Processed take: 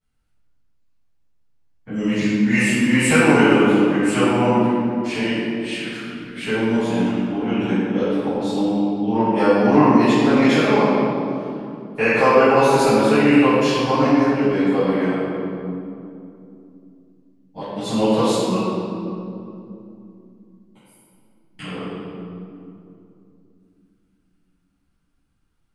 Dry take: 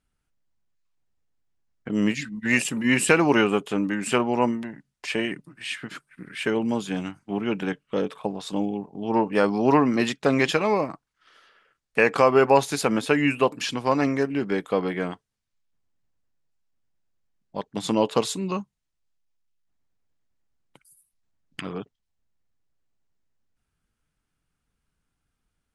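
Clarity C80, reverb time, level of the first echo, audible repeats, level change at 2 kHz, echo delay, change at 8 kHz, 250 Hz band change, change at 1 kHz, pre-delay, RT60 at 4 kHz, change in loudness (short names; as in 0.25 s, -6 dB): -2.0 dB, 2.8 s, none, none, +4.5 dB, none, +1.5 dB, +8.0 dB, +5.5 dB, 3 ms, 1.6 s, +6.0 dB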